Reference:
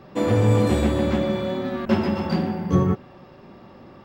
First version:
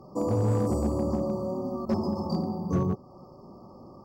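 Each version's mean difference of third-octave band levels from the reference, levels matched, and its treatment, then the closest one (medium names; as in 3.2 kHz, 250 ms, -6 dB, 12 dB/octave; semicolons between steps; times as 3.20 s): 4.5 dB: FFT band-reject 1.3–4.4 kHz; in parallel at -2 dB: compression 10:1, threshold -30 dBFS, peak gain reduction 17 dB; on the sum: one-sided clip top -12.5 dBFS, bottom -11 dBFS; trim -7.5 dB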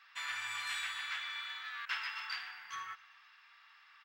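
19.0 dB: inverse Chebyshev high-pass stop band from 580 Hz, stop band 50 dB; treble shelf 5.7 kHz -11 dB; on a send: feedback delay 128 ms, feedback 55%, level -23 dB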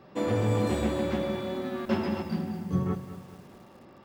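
3.0 dB: time-frequency box 2.22–2.86 s, 270–8400 Hz -7 dB; bass shelf 120 Hz -6 dB; bit-crushed delay 213 ms, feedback 55%, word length 7-bit, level -12 dB; trim -6 dB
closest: third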